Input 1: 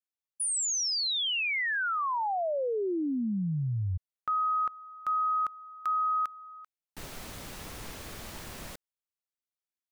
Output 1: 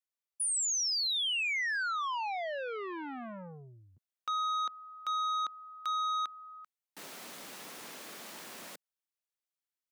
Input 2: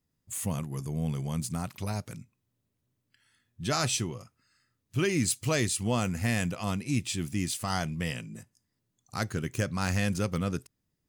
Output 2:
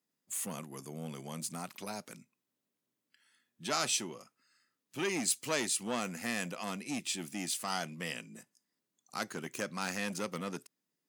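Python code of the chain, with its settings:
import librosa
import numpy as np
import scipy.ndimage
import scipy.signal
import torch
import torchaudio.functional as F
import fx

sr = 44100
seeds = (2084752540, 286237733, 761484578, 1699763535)

y = scipy.signal.sosfilt(scipy.signal.butter(4, 190.0, 'highpass', fs=sr, output='sos'), x)
y = fx.low_shelf(y, sr, hz=420.0, db=-5.0)
y = fx.transformer_sat(y, sr, knee_hz=1700.0)
y = y * 10.0 ** (-1.5 / 20.0)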